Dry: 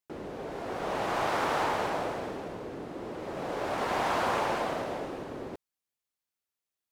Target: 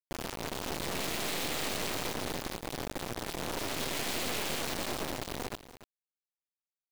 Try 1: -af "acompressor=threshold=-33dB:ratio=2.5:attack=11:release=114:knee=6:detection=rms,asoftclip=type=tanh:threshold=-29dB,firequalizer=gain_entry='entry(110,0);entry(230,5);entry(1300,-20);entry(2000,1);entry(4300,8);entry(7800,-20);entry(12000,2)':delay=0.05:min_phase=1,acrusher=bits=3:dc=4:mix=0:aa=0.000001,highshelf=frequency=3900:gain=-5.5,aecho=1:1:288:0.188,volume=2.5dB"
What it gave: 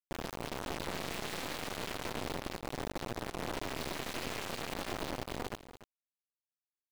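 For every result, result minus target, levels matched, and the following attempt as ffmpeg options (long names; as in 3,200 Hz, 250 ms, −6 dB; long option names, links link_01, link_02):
downward compressor: peak gain reduction +6 dB; 8,000 Hz band −4.0 dB
-af "asoftclip=type=tanh:threshold=-29dB,firequalizer=gain_entry='entry(110,0);entry(230,5);entry(1300,-20);entry(2000,1);entry(4300,8);entry(7800,-20);entry(12000,2)':delay=0.05:min_phase=1,acrusher=bits=3:dc=4:mix=0:aa=0.000001,highshelf=frequency=3900:gain=-5.5,aecho=1:1:288:0.188,volume=2.5dB"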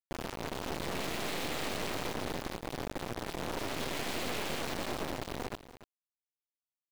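8,000 Hz band −4.0 dB
-af "asoftclip=type=tanh:threshold=-29dB,firequalizer=gain_entry='entry(110,0);entry(230,5);entry(1300,-20);entry(2000,1);entry(4300,8);entry(7800,-20);entry(12000,2)':delay=0.05:min_phase=1,acrusher=bits=3:dc=4:mix=0:aa=0.000001,highshelf=frequency=3900:gain=2,aecho=1:1:288:0.188,volume=2.5dB"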